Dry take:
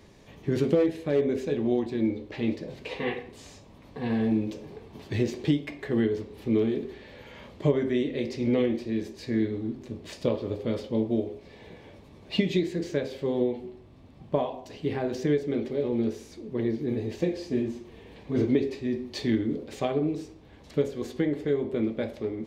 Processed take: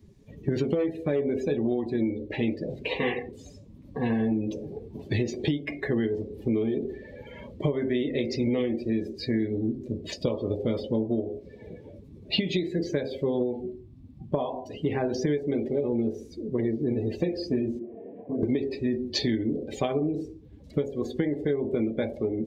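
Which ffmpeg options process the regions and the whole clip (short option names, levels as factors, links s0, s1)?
-filter_complex "[0:a]asettb=1/sr,asplit=3[s0][s1][s2];[s0]atrim=end=17.794[s3];[s1]atrim=start=17.79:end=18.43,asetpts=PTS-STARTPTS,afade=t=in:d=0.004:c=qsin,afade=t=out:st=0.636:d=0.004:c=qsin,highpass=120,equalizer=f=140:t=q:w=4:g=-10,equalizer=f=680:t=q:w=4:g=7,equalizer=f=1400:t=q:w=4:g=-7,lowpass=f=2000:w=0.5412,lowpass=f=2000:w=1.3066,acompressor=threshold=0.02:ratio=5:attack=3.2:release=140:knee=1:detection=peak,asplit=2[s4][s5];[s5]adelay=26,volume=0.708[s6];[s4][s6]amix=inputs=2:normalize=0,atrim=end_sample=28224[s7];[s2]atrim=start=18.426[s8];[s3][s7]acrossfade=d=0.004:c1=hsin:c2=qsin[s9];[s9][s8]acrossfade=d=0.004:c1=qsin:c2=hsin,afftdn=nr=23:nf=-43,highshelf=f=5100:g=11.5,acompressor=threshold=0.0355:ratio=6,volume=2"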